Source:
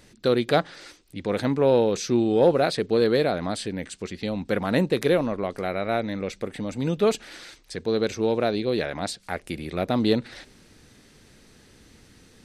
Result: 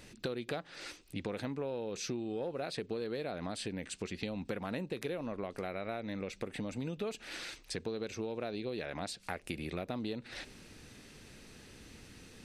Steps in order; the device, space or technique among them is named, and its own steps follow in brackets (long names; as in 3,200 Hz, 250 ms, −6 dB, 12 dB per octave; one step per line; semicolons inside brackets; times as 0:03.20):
serial compression, leveller first (downward compressor 2 to 1, threshold −25 dBFS, peak gain reduction 7 dB; downward compressor 5 to 1, threshold −35 dBFS, peak gain reduction 14 dB)
parametric band 2,600 Hz +5.5 dB 0.26 octaves
level −1 dB